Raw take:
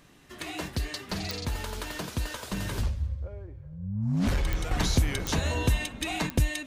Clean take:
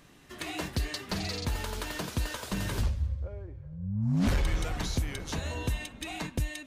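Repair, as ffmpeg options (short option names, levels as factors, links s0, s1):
-af "adeclick=t=4,asetnsamples=n=441:p=0,asendcmd='4.71 volume volume -6.5dB',volume=1"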